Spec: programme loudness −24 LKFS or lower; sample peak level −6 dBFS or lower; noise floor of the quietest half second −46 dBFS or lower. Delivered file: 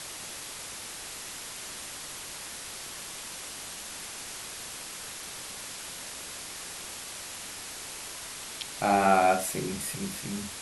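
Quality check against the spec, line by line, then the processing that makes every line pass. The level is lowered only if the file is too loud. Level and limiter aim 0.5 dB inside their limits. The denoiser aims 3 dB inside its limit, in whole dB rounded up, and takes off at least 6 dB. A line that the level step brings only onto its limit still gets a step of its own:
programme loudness −33.0 LKFS: in spec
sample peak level −10.5 dBFS: in spec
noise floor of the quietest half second −41 dBFS: out of spec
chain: broadband denoise 8 dB, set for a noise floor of −41 dBFS

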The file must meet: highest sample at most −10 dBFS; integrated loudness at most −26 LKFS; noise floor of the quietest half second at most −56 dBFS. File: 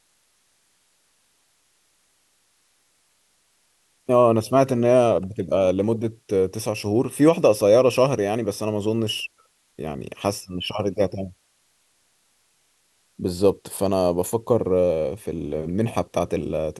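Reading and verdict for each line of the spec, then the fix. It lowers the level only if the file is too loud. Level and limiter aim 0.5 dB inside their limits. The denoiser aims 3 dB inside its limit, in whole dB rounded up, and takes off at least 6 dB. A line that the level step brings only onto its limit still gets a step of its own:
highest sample −5.0 dBFS: out of spec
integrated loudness −22.0 LKFS: out of spec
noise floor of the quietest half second −65 dBFS: in spec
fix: level −4.5 dB
brickwall limiter −10.5 dBFS

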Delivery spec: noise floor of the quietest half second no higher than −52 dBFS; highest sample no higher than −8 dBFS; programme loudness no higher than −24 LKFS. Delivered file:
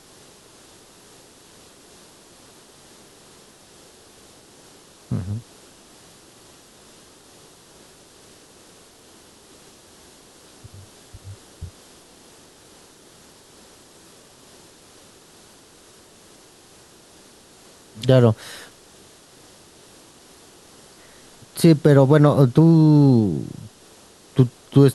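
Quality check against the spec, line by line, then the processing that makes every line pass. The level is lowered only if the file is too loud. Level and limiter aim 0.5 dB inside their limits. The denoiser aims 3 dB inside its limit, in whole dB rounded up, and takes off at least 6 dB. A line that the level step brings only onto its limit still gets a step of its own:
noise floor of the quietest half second −49 dBFS: out of spec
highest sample −2.5 dBFS: out of spec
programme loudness −17.0 LKFS: out of spec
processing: level −7.5 dB

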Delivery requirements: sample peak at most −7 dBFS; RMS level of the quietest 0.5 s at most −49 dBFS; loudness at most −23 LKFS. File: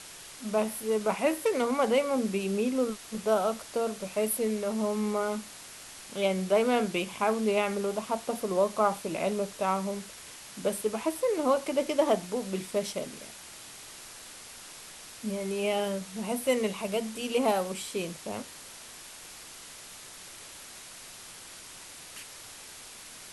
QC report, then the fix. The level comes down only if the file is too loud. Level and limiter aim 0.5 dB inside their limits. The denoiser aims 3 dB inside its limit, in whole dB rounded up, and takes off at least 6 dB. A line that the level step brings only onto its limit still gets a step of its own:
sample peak −12.5 dBFS: in spec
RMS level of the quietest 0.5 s −47 dBFS: out of spec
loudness −29.5 LKFS: in spec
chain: broadband denoise 6 dB, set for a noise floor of −47 dBFS

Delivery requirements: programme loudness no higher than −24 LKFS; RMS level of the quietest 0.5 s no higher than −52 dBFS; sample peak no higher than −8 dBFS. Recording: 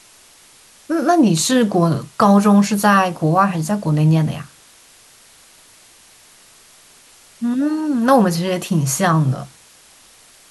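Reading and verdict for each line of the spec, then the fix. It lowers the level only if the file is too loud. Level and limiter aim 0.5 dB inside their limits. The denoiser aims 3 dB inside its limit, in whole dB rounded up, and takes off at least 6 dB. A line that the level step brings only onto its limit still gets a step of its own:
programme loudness −16.5 LKFS: out of spec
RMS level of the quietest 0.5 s −48 dBFS: out of spec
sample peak −2.0 dBFS: out of spec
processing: level −8 dB

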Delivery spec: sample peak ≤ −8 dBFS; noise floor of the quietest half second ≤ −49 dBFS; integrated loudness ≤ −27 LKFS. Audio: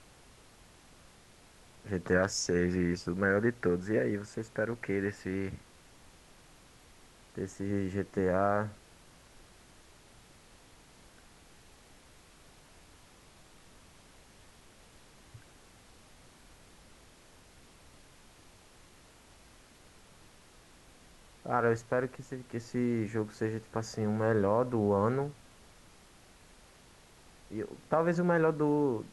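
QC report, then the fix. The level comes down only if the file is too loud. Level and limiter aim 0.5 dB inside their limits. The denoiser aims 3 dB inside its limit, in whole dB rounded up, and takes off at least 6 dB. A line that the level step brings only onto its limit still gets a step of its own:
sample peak −14.0 dBFS: in spec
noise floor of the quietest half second −58 dBFS: in spec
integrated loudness −31.5 LKFS: in spec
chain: no processing needed

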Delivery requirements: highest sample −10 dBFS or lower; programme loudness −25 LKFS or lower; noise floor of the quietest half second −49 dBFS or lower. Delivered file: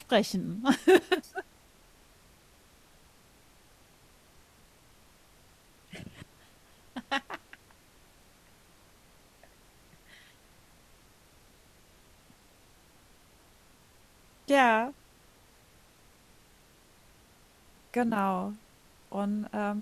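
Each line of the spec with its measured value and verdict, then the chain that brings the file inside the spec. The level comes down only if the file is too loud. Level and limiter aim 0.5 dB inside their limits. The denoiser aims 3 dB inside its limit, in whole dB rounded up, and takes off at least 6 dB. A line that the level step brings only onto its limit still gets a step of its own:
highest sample −7.5 dBFS: out of spec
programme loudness −28.5 LKFS: in spec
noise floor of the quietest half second −60 dBFS: in spec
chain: brickwall limiter −10.5 dBFS

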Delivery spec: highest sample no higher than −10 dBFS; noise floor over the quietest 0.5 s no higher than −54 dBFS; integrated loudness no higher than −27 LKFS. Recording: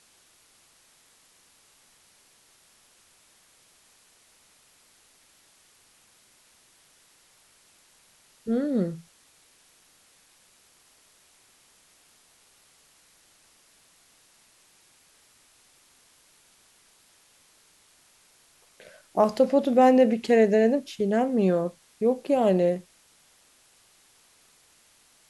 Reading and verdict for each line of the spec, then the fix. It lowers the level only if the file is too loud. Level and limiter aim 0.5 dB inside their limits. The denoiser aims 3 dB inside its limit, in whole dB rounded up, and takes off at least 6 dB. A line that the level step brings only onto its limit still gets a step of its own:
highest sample −8.0 dBFS: out of spec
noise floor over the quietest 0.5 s −60 dBFS: in spec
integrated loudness −23.0 LKFS: out of spec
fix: level −4.5 dB

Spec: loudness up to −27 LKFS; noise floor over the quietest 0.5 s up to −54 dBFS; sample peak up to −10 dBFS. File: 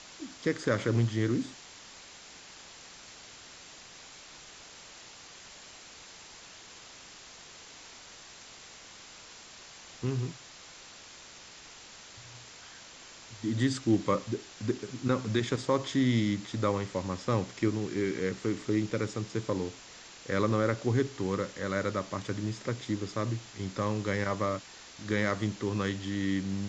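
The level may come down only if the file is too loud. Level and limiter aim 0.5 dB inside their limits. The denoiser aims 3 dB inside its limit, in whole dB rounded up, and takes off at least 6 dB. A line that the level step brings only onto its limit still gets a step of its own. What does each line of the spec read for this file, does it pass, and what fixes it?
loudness −31.5 LKFS: in spec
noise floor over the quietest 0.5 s −50 dBFS: out of spec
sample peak −12.5 dBFS: in spec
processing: broadband denoise 7 dB, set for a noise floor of −50 dBFS

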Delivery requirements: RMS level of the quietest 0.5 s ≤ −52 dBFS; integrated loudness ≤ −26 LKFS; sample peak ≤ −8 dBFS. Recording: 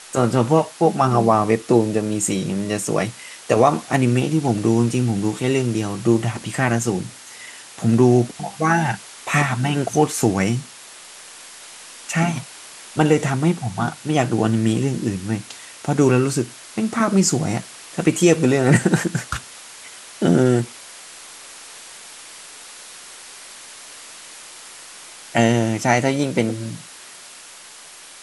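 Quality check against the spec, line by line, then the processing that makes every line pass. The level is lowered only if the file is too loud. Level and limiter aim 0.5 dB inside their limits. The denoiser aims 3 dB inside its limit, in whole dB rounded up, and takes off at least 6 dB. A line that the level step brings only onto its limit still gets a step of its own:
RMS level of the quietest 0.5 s −42 dBFS: out of spec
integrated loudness −19.5 LKFS: out of spec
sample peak −2.5 dBFS: out of spec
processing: broadband denoise 6 dB, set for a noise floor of −42 dBFS
level −7 dB

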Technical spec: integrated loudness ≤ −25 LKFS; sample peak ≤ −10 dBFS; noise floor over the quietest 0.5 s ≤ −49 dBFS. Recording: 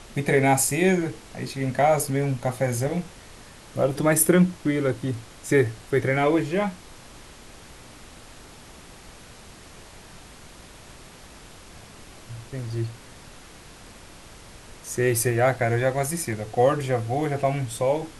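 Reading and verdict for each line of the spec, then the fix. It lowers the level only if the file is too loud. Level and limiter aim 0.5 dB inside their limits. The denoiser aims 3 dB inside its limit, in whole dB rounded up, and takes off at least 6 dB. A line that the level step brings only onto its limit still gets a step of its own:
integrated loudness −23.5 LKFS: out of spec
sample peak −6.5 dBFS: out of spec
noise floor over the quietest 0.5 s −46 dBFS: out of spec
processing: broadband denoise 6 dB, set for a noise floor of −46 dBFS
level −2 dB
brickwall limiter −10.5 dBFS

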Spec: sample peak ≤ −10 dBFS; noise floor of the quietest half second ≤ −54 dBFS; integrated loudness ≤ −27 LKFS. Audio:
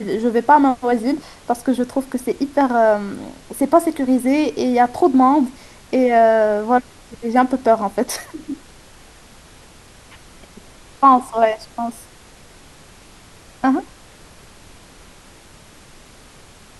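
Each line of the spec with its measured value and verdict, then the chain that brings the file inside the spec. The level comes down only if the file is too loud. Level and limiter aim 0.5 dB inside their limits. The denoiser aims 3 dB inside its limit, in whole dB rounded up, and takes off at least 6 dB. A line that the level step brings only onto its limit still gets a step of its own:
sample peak −2.0 dBFS: out of spec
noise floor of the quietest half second −45 dBFS: out of spec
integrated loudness −17.5 LKFS: out of spec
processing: level −10 dB

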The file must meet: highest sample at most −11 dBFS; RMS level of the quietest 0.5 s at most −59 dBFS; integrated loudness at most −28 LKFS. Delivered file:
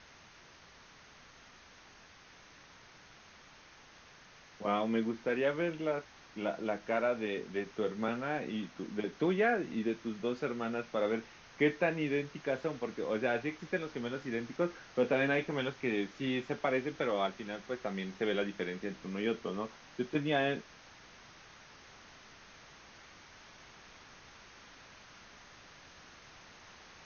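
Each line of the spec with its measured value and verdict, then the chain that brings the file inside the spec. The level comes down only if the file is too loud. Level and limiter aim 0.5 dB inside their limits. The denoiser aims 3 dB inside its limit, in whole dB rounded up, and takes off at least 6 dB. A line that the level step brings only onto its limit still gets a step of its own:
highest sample −17.0 dBFS: in spec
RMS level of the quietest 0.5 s −58 dBFS: out of spec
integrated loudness −35.0 LKFS: in spec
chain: broadband denoise 6 dB, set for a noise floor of −58 dBFS

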